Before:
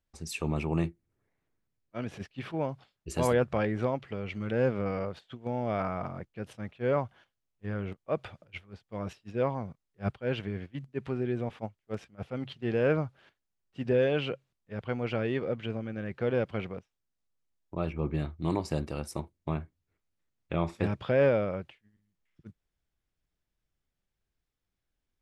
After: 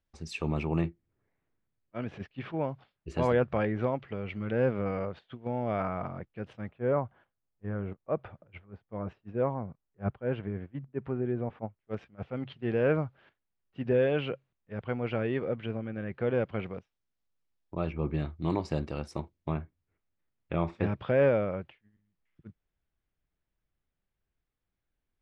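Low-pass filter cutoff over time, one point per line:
4,900 Hz
from 0:00.81 3,000 Hz
from 0:06.69 1,500 Hz
from 0:11.80 2,800 Hz
from 0:16.66 4,700 Hz
from 0:19.52 2,900 Hz

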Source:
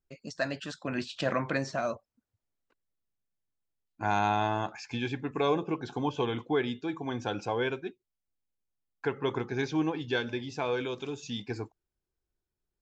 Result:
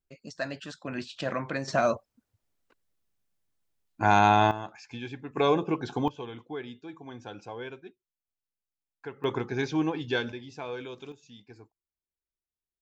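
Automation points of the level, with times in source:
−2 dB
from 0:01.68 +7 dB
from 0:04.51 −5.5 dB
from 0:05.37 +3.5 dB
from 0:06.08 −9 dB
from 0:09.24 +1.5 dB
from 0:10.32 −6 dB
from 0:11.12 −14.5 dB

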